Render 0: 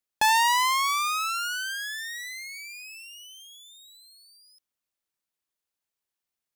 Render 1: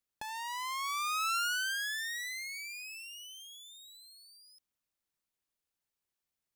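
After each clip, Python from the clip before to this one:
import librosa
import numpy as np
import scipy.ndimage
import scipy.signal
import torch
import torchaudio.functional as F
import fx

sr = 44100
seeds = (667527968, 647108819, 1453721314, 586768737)

y = fx.low_shelf(x, sr, hz=220.0, db=6.5)
y = fx.over_compress(y, sr, threshold_db=-29.0, ratio=-1.0)
y = F.gain(torch.from_numpy(y), -6.0).numpy()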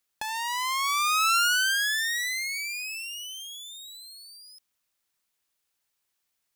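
y = fx.tilt_shelf(x, sr, db=-4.0, hz=640.0)
y = F.gain(torch.from_numpy(y), 6.5).numpy()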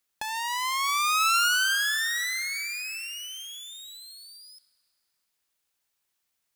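y = fx.rev_plate(x, sr, seeds[0], rt60_s=3.3, hf_ratio=0.55, predelay_ms=0, drr_db=15.0)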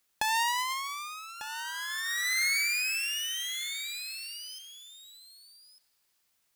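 y = fx.over_compress(x, sr, threshold_db=-31.0, ratio=-0.5)
y = y + 10.0 ** (-12.5 / 20.0) * np.pad(y, (int(1197 * sr / 1000.0), 0))[:len(y)]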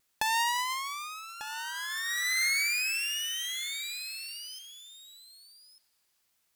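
y = fx.vibrato(x, sr, rate_hz=1.1, depth_cents=21.0)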